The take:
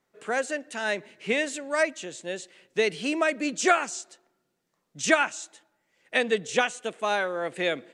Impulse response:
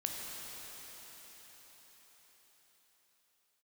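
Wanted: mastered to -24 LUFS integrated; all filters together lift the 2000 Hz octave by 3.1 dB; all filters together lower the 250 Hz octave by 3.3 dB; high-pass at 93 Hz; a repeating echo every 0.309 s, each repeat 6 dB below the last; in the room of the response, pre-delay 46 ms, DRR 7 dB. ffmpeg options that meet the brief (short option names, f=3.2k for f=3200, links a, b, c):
-filter_complex "[0:a]highpass=93,equalizer=f=250:t=o:g=-4.5,equalizer=f=2k:t=o:g=4,aecho=1:1:309|618|927|1236|1545|1854:0.501|0.251|0.125|0.0626|0.0313|0.0157,asplit=2[a][b];[1:a]atrim=start_sample=2205,adelay=46[c];[b][c]afir=irnorm=-1:irlink=0,volume=-9.5dB[d];[a][d]amix=inputs=2:normalize=0,volume=0.5dB"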